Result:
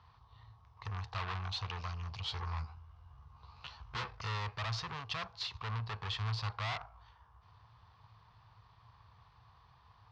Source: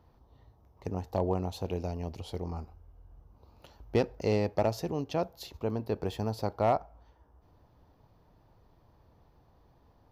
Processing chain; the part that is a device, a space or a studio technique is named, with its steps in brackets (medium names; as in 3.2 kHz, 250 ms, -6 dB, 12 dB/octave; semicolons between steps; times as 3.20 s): scooped metal amplifier (valve stage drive 41 dB, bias 0.65; cabinet simulation 82–4500 Hz, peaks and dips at 110 Hz +9 dB, 570 Hz -9 dB, 1.1 kHz +10 dB; amplifier tone stack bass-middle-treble 10-0-10); 2.24–4.11 s: doubling 14 ms -2 dB; trim +14.5 dB